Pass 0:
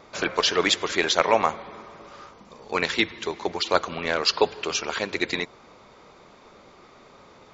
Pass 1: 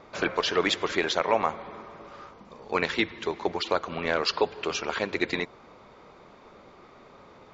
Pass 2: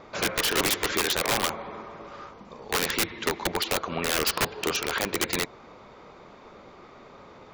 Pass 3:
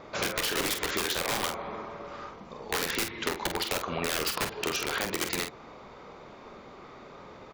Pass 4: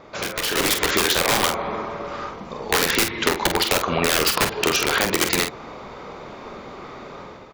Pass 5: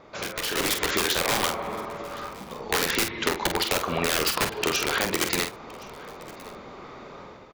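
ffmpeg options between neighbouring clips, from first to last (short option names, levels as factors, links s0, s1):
-af "lowpass=f=2600:p=1,alimiter=limit=0.299:level=0:latency=1:release=204"
-af "aeval=exprs='(mod(10*val(0)+1,2)-1)/10':c=same,volume=1.41"
-af "acompressor=threshold=0.0447:ratio=6,aecho=1:1:26|47:0.158|0.447"
-af "dynaudnorm=f=360:g=3:m=2.82,volume=1.19"
-af "aecho=1:1:1068:0.0794,volume=0.562"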